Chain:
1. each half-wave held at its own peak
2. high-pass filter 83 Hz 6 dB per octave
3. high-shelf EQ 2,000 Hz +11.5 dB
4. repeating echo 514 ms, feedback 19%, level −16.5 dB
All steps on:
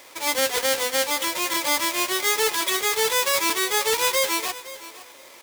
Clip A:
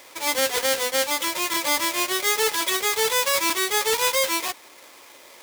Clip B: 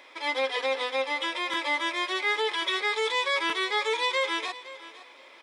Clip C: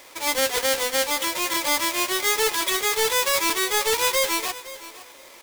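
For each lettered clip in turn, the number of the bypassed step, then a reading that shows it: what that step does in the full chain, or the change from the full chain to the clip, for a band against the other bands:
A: 4, change in momentary loudness spread −3 LU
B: 1, distortion level −5 dB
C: 2, 125 Hz band +2.0 dB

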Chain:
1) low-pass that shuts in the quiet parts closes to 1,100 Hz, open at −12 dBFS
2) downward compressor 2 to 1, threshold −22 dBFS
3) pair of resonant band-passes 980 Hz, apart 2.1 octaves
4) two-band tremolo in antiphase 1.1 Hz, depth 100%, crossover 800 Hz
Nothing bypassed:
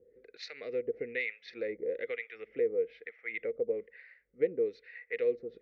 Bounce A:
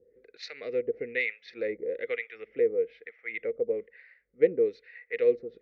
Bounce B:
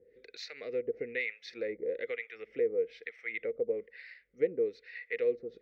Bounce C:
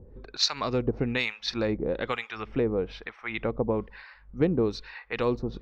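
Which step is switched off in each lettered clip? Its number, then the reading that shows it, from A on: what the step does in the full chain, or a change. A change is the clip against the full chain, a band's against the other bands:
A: 2, change in integrated loudness +5.0 LU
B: 1, change in momentary loudness spread +3 LU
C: 3, change in integrated loudness +6.0 LU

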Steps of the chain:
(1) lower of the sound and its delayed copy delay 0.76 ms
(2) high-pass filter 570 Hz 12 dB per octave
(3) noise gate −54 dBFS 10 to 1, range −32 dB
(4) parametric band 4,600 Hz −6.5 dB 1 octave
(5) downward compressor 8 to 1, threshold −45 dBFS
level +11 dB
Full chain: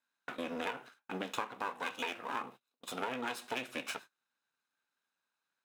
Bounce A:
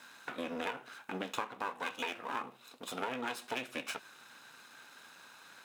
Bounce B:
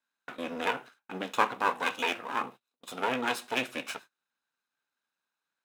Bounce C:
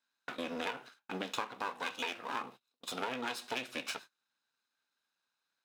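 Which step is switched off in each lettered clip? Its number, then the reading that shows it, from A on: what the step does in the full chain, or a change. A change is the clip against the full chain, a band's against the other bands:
3, change in momentary loudness spread +8 LU
5, average gain reduction 5.0 dB
4, 4 kHz band +3.0 dB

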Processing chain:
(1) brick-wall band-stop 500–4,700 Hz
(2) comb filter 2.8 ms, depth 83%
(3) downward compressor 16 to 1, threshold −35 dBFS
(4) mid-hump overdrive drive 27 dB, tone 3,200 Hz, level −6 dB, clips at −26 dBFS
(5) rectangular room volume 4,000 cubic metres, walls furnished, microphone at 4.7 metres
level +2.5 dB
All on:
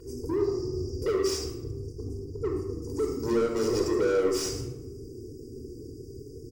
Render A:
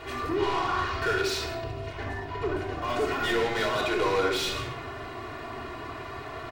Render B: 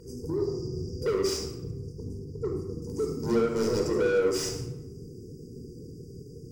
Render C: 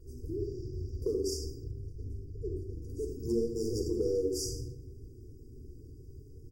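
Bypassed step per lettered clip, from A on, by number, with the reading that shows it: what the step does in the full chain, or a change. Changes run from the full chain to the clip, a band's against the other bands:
1, 2 kHz band +15.0 dB
2, change in momentary loudness spread +2 LU
4, 125 Hz band +4.0 dB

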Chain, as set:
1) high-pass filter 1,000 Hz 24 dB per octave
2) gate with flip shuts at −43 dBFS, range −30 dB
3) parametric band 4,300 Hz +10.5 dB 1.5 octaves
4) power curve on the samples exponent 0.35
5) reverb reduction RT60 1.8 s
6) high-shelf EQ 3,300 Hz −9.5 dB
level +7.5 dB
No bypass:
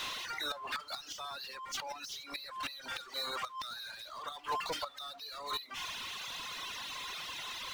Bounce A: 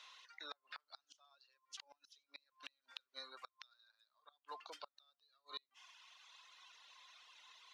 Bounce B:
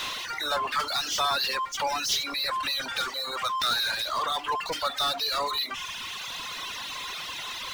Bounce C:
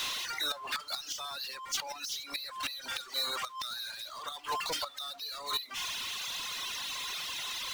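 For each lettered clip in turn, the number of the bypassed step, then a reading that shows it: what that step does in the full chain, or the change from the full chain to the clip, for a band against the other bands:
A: 4, change in crest factor +16.5 dB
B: 2, change in momentary loudness spread +3 LU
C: 6, 8 kHz band +7.0 dB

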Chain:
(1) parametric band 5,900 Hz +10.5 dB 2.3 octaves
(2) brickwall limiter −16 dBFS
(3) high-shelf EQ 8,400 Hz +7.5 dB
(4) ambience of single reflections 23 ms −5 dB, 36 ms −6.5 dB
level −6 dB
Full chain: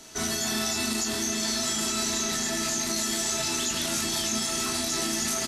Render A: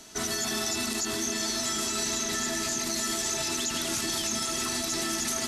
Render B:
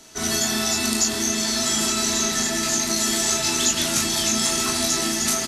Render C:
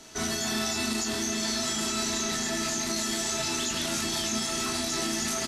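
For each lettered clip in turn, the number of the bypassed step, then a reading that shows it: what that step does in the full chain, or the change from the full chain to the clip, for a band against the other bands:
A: 4, echo-to-direct ratio −2.5 dB to none audible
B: 2, average gain reduction 5.5 dB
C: 3, 8 kHz band −2.5 dB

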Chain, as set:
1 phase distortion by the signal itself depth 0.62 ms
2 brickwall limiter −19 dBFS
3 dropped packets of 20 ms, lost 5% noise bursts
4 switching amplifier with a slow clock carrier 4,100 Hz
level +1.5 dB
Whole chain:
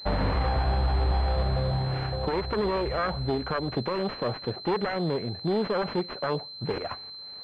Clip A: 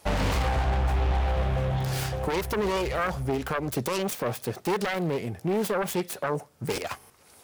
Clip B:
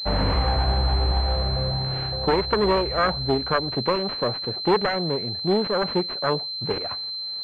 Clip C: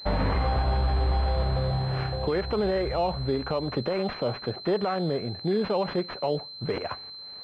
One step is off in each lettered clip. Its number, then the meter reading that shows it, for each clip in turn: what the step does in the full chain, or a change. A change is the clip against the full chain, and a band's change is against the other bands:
4, 2 kHz band +3.0 dB
2, average gain reduction 2.0 dB
1, 2 kHz band −2.0 dB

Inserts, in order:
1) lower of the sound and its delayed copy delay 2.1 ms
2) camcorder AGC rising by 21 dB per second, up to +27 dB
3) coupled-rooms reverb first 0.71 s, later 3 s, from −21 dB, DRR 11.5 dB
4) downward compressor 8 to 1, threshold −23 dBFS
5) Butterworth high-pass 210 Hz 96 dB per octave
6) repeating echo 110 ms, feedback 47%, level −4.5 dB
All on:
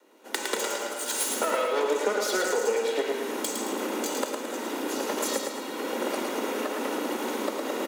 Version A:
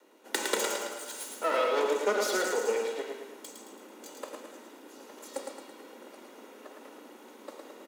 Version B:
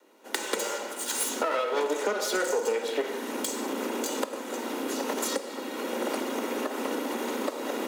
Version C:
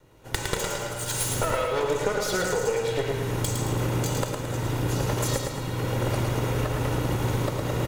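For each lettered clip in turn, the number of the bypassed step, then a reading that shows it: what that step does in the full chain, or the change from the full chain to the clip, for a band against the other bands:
2, change in crest factor +3.5 dB
6, change in integrated loudness −1.5 LU
5, change in momentary loudness spread −2 LU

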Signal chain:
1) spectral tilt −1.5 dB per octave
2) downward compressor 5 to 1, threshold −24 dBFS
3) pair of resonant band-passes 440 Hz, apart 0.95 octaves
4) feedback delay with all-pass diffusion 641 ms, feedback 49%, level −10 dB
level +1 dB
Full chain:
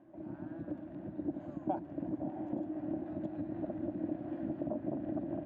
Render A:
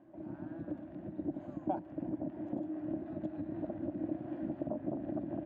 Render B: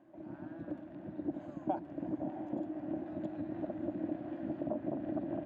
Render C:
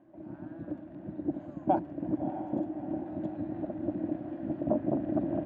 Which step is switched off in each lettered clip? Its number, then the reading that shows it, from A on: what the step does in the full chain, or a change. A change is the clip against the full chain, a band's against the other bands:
4, echo-to-direct ratio −9.0 dB to none audible
1, 125 Hz band −2.5 dB
2, average gain reduction 3.0 dB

